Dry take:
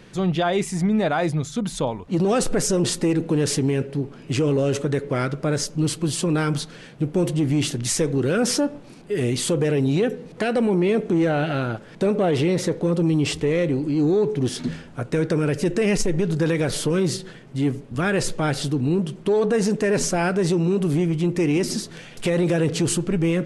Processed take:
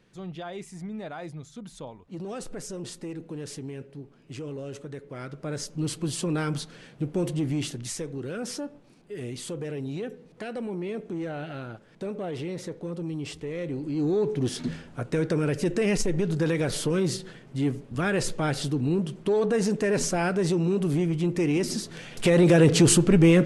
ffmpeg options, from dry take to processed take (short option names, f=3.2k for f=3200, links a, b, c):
-af "volume=11dB,afade=t=in:st=5.14:d=0.85:silence=0.316228,afade=t=out:st=7.4:d=0.65:silence=0.446684,afade=t=in:st=13.52:d=0.81:silence=0.354813,afade=t=in:st=21.78:d=0.9:silence=0.398107"